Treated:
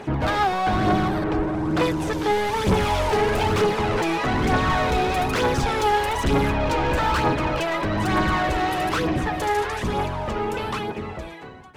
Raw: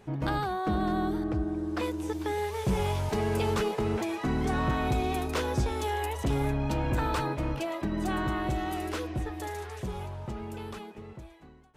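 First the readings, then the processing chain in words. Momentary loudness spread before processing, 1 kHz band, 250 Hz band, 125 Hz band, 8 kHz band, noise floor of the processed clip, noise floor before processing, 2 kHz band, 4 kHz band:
10 LU, +11.0 dB, +6.0 dB, +5.5 dB, +7.5 dB, -36 dBFS, -50 dBFS, +12.0 dB, +11.0 dB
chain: octaver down 1 oct, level +2 dB; overdrive pedal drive 26 dB, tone 2900 Hz, clips at -15 dBFS; phaser 1.1 Hz, delay 2.6 ms, feedback 41%

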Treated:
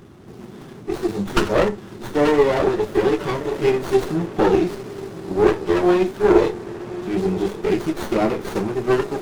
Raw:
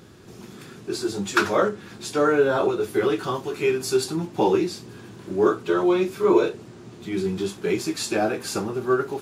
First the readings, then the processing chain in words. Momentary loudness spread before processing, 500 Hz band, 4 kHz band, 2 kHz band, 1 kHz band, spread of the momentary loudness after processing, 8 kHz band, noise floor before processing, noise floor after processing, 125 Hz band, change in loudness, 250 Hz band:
18 LU, +3.5 dB, -0.5 dB, +0.5 dB, +2.5 dB, 15 LU, n/a, -44 dBFS, -40 dBFS, +5.5 dB, +3.0 dB, +4.0 dB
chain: bin magnitudes rounded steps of 15 dB; diffused feedback echo 1.085 s, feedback 46%, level -15 dB; running maximum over 17 samples; gain +4.5 dB

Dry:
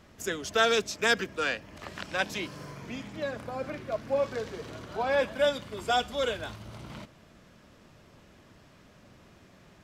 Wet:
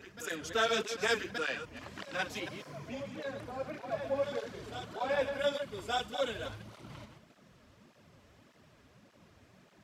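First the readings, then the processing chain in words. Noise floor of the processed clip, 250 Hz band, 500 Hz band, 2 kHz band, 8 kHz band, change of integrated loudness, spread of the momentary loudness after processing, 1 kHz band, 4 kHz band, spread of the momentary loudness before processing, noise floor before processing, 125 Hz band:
-63 dBFS, -5.0 dB, -5.0 dB, -5.5 dB, -5.5 dB, -5.5 dB, 14 LU, -5.5 dB, -5.0 dB, 16 LU, -57 dBFS, -4.5 dB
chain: reverse delay 0.138 s, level -8 dB; reverse echo 1.174 s -11 dB; tape flanging out of phase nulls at 1.7 Hz, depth 6.4 ms; gain -3 dB

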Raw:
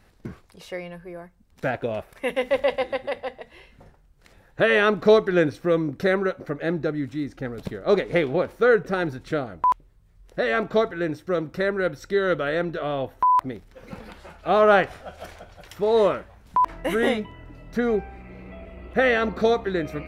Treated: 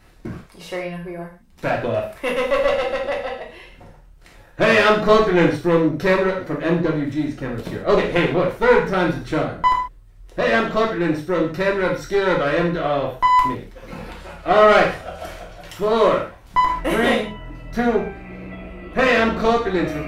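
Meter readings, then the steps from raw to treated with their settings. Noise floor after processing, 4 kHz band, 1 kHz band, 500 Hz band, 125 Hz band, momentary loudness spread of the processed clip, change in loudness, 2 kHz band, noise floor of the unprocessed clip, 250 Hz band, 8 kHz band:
-47 dBFS, +6.5 dB, +5.5 dB, +3.5 dB, +6.5 dB, 20 LU, +4.5 dB, +4.5 dB, -56 dBFS, +5.5 dB, n/a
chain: one diode to ground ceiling -22.5 dBFS; non-linear reverb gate 0.17 s falling, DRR -2 dB; gain +3.5 dB

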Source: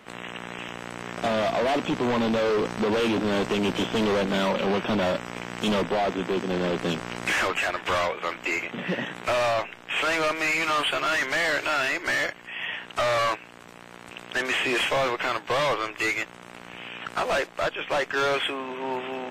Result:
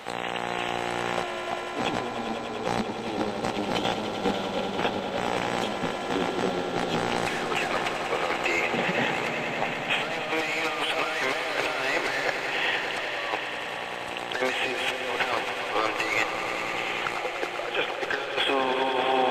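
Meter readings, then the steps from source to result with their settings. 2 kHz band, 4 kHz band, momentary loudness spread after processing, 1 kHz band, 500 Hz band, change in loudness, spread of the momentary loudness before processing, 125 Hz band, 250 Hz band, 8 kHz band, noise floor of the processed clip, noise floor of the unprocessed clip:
-1.0 dB, 0.0 dB, 5 LU, +0.5 dB, -3.0 dB, -1.5 dB, 12 LU, -3.5 dB, -3.5 dB, -1.5 dB, -34 dBFS, -46 dBFS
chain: thirty-one-band EQ 200 Hz -4 dB, 500 Hz +7 dB, 800 Hz +11 dB, 4000 Hz +6 dB; negative-ratio compressor -27 dBFS, ratio -0.5; swelling echo 98 ms, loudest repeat 5, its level -11 dB; mismatched tape noise reduction encoder only; gain -1.5 dB

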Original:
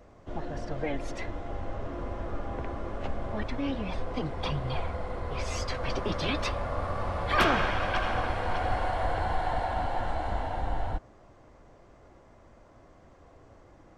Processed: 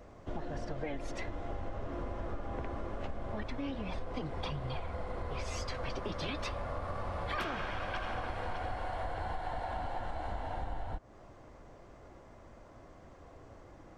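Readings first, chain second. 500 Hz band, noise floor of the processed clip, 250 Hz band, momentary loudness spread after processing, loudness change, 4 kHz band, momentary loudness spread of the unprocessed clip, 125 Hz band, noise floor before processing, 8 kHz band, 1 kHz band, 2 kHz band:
-7.0 dB, -55 dBFS, -7.0 dB, 18 LU, -7.5 dB, -8.0 dB, 9 LU, -6.5 dB, -56 dBFS, -6.5 dB, -8.0 dB, -9.0 dB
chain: compressor, threshold -35 dBFS, peak gain reduction 15.5 dB; gain +1 dB

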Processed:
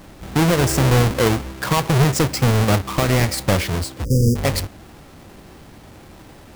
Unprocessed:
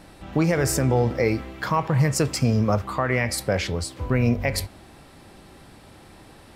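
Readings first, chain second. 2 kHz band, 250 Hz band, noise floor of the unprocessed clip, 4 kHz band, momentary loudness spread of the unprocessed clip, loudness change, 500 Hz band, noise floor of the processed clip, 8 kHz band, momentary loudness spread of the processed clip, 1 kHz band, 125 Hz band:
+3.5 dB, +3.5 dB, -49 dBFS, +7.5 dB, 8 LU, +4.5 dB, +3.0 dB, -44 dBFS, +4.5 dB, 8 LU, +4.5 dB, +6.0 dB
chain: half-waves squared off; spectral delete 4.05–4.36, 580–4700 Hz

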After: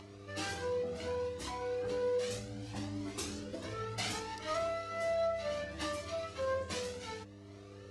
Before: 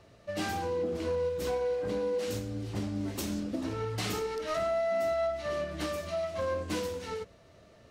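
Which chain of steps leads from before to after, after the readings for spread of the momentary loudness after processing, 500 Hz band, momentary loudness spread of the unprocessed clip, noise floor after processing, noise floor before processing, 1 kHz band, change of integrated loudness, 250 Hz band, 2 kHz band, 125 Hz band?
10 LU, -5.0 dB, 7 LU, -52 dBFS, -58 dBFS, -4.0 dB, -5.0 dB, -8.5 dB, -2.0 dB, -6.0 dB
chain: elliptic low-pass 11000 Hz, stop band 40 dB; low shelf 350 Hz -7.5 dB; upward compressor, threshold -49 dBFS; buzz 100 Hz, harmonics 5, -51 dBFS -1 dB/oct; cascading flanger rising 0.67 Hz; gain +3.5 dB

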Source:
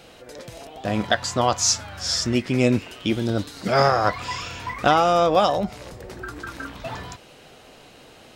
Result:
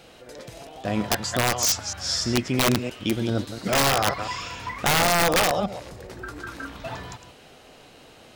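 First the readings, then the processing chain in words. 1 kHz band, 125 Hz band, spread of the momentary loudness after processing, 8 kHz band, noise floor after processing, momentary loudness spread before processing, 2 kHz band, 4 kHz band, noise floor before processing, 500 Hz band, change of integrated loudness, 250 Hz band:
-4.0 dB, -1.5 dB, 19 LU, +0.5 dB, -50 dBFS, 19 LU, +2.0 dB, +1.0 dB, -48 dBFS, -4.5 dB, -1.5 dB, -2.5 dB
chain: reverse delay 0.138 s, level -10 dB; wrapped overs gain 11 dB; gain -2 dB

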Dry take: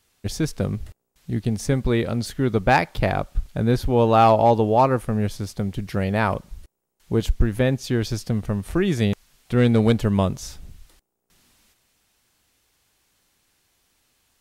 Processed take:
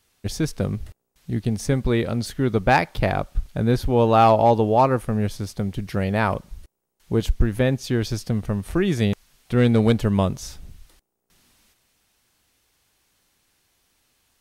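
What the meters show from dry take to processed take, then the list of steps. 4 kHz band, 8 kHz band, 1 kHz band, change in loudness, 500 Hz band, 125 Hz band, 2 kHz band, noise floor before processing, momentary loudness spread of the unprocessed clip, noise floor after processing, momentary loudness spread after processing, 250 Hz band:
0.0 dB, 0.0 dB, 0.0 dB, 0.0 dB, 0.0 dB, 0.0 dB, 0.0 dB, -78 dBFS, 11 LU, -78 dBFS, 11 LU, 0.0 dB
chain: notch 7300 Hz, Q 26

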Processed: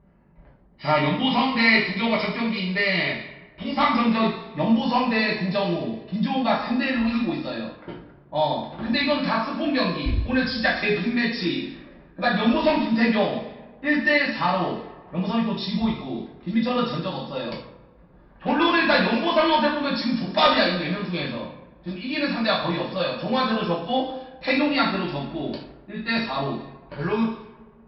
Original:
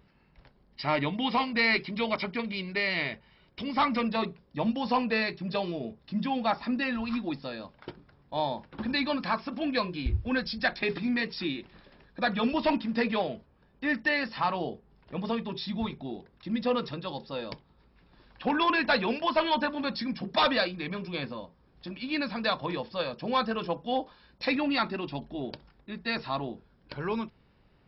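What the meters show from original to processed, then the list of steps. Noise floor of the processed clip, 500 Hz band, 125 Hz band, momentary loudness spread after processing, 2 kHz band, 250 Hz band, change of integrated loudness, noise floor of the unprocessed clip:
-51 dBFS, +7.0 dB, +8.5 dB, 13 LU, +7.0 dB, +8.0 dB, +7.0 dB, -64 dBFS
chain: two-slope reverb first 0.58 s, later 1.8 s, from -16 dB, DRR -5.5 dB; low-pass opened by the level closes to 1100 Hz, open at -22 dBFS

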